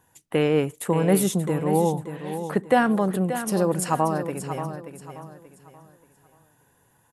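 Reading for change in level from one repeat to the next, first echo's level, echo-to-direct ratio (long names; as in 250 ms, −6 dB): −9.5 dB, −10.0 dB, −9.5 dB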